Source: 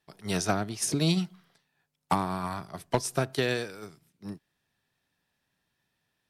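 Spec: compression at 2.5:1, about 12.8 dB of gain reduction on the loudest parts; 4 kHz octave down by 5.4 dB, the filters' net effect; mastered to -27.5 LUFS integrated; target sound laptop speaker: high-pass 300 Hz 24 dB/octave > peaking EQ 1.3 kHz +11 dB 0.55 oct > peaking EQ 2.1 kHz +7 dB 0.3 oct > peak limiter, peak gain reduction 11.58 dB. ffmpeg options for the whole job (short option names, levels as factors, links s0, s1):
-af "equalizer=f=4000:t=o:g=-7.5,acompressor=threshold=0.00891:ratio=2.5,highpass=f=300:w=0.5412,highpass=f=300:w=1.3066,equalizer=f=1300:t=o:w=0.55:g=11,equalizer=f=2100:t=o:w=0.3:g=7,volume=6.31,alimiter=limit=0.2:level=0:latency=1"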